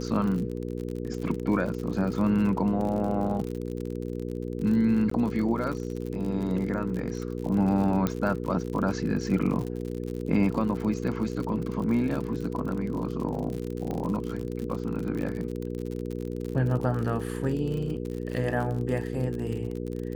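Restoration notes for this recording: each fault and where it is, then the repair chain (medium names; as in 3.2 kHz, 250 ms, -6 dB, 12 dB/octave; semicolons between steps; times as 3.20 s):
crackle 57 per s -32 dBFS
hum 60 Hz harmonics 8 -33 dBFS
5.10–5.11 s: dropout 14 ms
8.07 s: pop -13 dBFS
13.91 s: pop -21 dBFS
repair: de-click; de-hum 60 Hz, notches 8; interpolate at 5.10 s, 14 ms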